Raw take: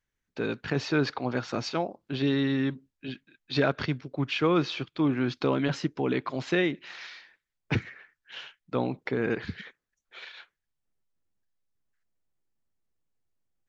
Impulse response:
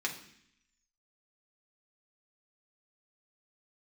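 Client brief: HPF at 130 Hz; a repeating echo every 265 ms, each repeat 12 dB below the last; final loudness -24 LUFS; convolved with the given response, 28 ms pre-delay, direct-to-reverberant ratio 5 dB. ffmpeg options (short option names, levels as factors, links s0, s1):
-filter_complex "[0:a]highpass=130,aecho=1:1:265|530|795:0.251|0.0628|0.0157,asplit=2[s0][s1];[1:a]atrim=start_sample=2205,adelay=28[s2];[s1][s2]afir=irnorm=-1:irlink=0,volume=0.335[s3];[s0][s3]amix=inputs=2:normalize=0,volume=1.68"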